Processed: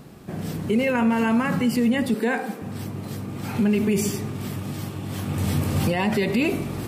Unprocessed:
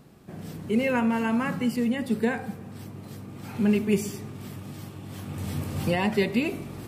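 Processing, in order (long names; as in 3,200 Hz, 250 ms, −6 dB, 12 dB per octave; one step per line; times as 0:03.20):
0:02.14–0:02.62: high-pass filter 230 Hz 24 dB per octave
brickwall limiter −22 dBFS, peak gain reduction 10.5 dB
level +8.5 dB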